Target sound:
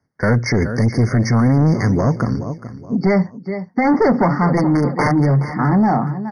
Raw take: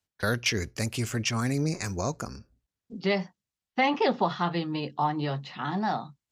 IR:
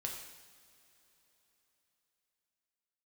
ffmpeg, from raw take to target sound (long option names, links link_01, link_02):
-filter_complex "[0:a]asplit=3[link_01][link_02][link_03];[link_01]afade=type=out:start_time=4.56:duration=0.02[link_04];[link_02]aeval=exprs='(mod(11.9*val(0)+1,2)-1)/11.9':channel_layout=same,afade=type=in:start_time=4.56:duration=0.02,afade=type=out:start_time=5.25:duration=0.02[link_05];[link_03]afade=type=in:start_time=5.25:duration=0.02[link_06];[link_04][link_05][link_06]amix=inputs=3:normalize=0,equalizer=frequency=125:width_type=o:width=1:gain=12,equalizer=frequency=250:width_type=o:width=1:gain=10,equalizer=frequency=500:width_type=o:width=1:gain=6,equalizer=frequency=1000:width_type=o:width=1:gain=4,equalizer=frequency=2000:width_type=o:width=1:gain=4,equalizer=frequency=8000:width_type=o:width=1:gain=-10,asplit=3[link_07][link_08][link_09];[link_07]afade=type=out:start_time=3.21:duration=0.02[link_10];[link_08]acompressor=threshold=-25dB:ratio=2,afade=type=in:start_time=3.21:duration=0.02,afade=type=out:start_time=3.84:duration=0.02[link_11];[link_09]afade=type=in:start_time=3.84:duration=0.02[link_12];[link_10][link_11][link_12]amix=inputs=3:normalize=0,aecho=1:1:422|844|1266:0.141|0.0452|0.0145,asoftclip=type=tanh:threshold=-15.5dB,aresample=22050,aresample=44100,alimiter=level_in=18dB:limit=-1dB:release=50:level=0:latency=1,afftfilt=real='re*eq(mod(floor(b*sr/1024/2200),2),0)':imag='im*eq(mod(floor(b*sr/1024/2200),2),0)':win_size=1024:overlap=0.75,volume=-8.5dB"